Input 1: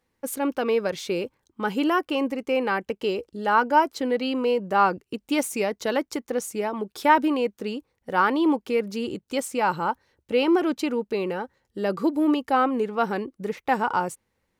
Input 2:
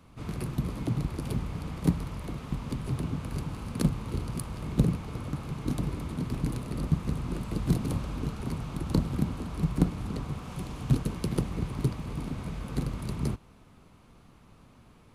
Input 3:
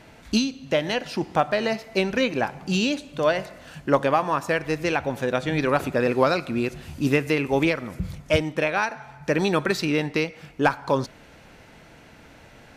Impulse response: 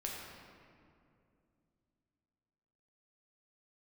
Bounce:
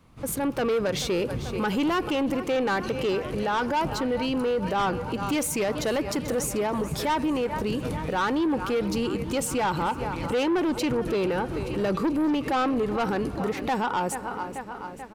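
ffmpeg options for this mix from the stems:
-filter_complex "[0:a]dynaudnorm=f=180:g=5:m=11.5dB,volume=1.5dB,asplit=3[a][b][c];[b]volume=-23.5dB[d];[c]volume=-18.5dB[e];[1:a]volume=-3.5dB,asplit=3[f][g][h];[g]volume=-8dB[i];[h]volume=-8dB[j];[2:a]acompressor=threshold=-24dB:ratio=6,adelay=2500,volume=-9dB[k];[3:a]atrim=start_sample=2205[l];[d][i]amix=inputs=2:normalize=0[m];[m][l]afir=irnorm=-1:irlink=0[n];[e][j]amix=inputs=2:normalize=0,aecho=0:1:436|872|1308|1744|2180|2616|3052|3488|3924:1|0.58|0.336|0.195|0.113|0.0656|0.0381|0.0221|0.0128[o];[a][f][k][n][o]amix=inputs=5:normalize=0,asoftclip=type=tanh:threshold=-11dB,alimiter=limit=-20.5dB:level=0:latency=1:release=124"

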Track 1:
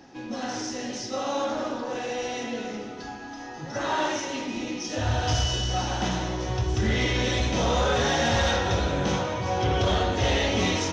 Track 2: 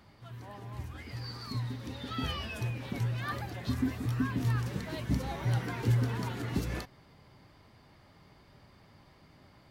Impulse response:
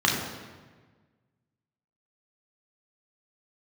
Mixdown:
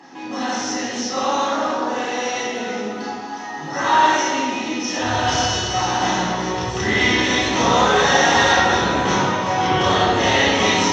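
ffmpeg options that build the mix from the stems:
-filter_complex "[0:a]highshelf=f=2.5k:g=-10,volume=0.5dB,asplit=2[a][b];[b]volume=-3.5dB[c];[1:a]acompressor=threshold=-41dB:ratio=6,volume=-14dB[d];[2:a]atrim=start_sample=2205[e];[c][e]afir=irnorm=-1:irlink=0[f];[a][d][f]amix=inputs=3:normalize=0,highpass=f=680:p=1,equalizer=f=7.4k:w=0.68:g=7"

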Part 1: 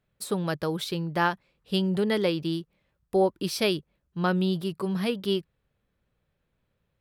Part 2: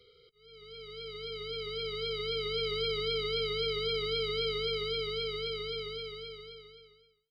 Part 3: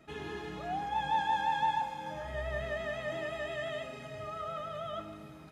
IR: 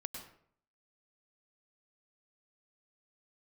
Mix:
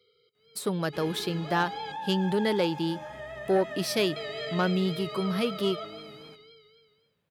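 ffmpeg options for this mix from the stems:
-filter_complex "[0:a]asoftclip=type=tanh:threshold=-17.5dB,adelay=350,volume=0.5dB[a];[1:a]volume=-7dB,asplit=3[b][c][d];[b]atrim=end=1.92,asetpts=PTS-STARTPTS,afade=t=out:st=1.916:d=0.004:c=hsin[e];[c]atrim=start=1.92:end=4.16,asetpts=PTS-STARTPTS,volume=0[f];[d]atrim=start=4.16,asetpts=PTS-STARTPTS,afade=t=in:d=0.004:c=hsin[g];[e][f][g]concat=n=3:v=0:a=1,asplit=2[h][i];[i]volume=-15dB[j];[2:a]alimiter=level_in=6dB:limit=-24dB:level=0:latency=1:release=96,volume=-6dB,adelay=850,volume=-2dB,asplit=2[k][l];[l]volume=-8dB[m];[3:a]atrim=start_sample=2205[n];[j][m]amix=inputs=2:normalize=0[o];[o][n]afir=irnorm=-1:irlink=0[p];[a][h][k][p]amix=inputs=4:normalize=0,highpass=130"

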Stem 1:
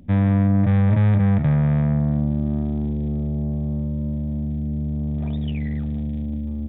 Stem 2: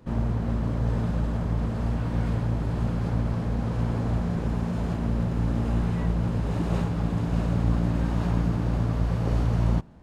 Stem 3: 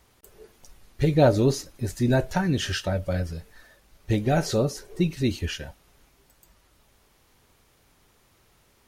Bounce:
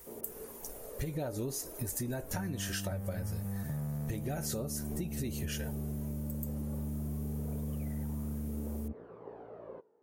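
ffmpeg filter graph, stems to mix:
-filter_complex "[0:a]adelay=2250,volume=-6.5dB[a];[1:a]highpass=f=420:t=q:w=4.9,aphaser=in_gain=1:out_gain=1:delay=3.9:decay=0.5:speed=0.23:type=triangular,volume=-19dB[b];[2:a]equalizer=f=4.1k:w=0.74:g=-13,acompressor=threshold=-30dB:ratio=3,crystalizer=i=6:c=0,volume=-1dB[c];[a][b]amix=inputs=2:normalize=0,lowpass=1.4k,acompressor=threshold=-32dB:ratio=6,volume=0dB[d];[c][d]amix=inputs=2:normalize=0,acompressor=threshold=-33dB:ratio=6"

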